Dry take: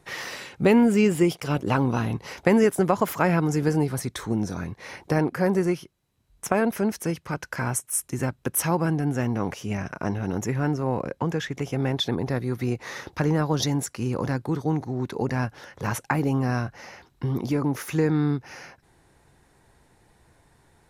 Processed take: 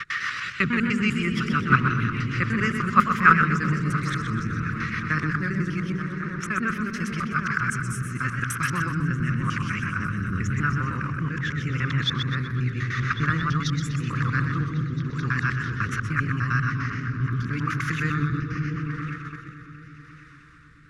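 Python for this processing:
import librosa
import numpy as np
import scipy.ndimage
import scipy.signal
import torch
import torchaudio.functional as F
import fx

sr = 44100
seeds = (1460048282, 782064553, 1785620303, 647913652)

p1 = fx.local_reverse(x, sr, ms=100.0)
p2 = fx.high_shelf(p1, sr, hz=4700.0, db=9.0)
p3 = p2 + fx.echo_opening(p2, sr, ms=220, hz=200, octaves=1, feedback_pct=70, wet_db=-3, dry=0)
p4 = fx.rotary_switch(p3, sr, hz=6.3, then_hz=0.85, switch_at_s=3.27)
p5 = fx.curve_eq(p4, sr, hz=(140.0, 370.0, 830.0, 1200.0, 7400.0, 13000.0), db=(0, -12, -27, 13, -12, -28))
p6 = fx.level_steps(p5, sr, step_db=20)
p7 = p5 + (p6 * 10.0 ** (2.0 / 20.0))
p8 = fx.echo_warbled(p7, sr, ms=125, feedback_pct=43, rate_hz=2.8, cents=101, wet_db=-7.5)
y = p8 * 10.0 ** (-1.0 / 20.0)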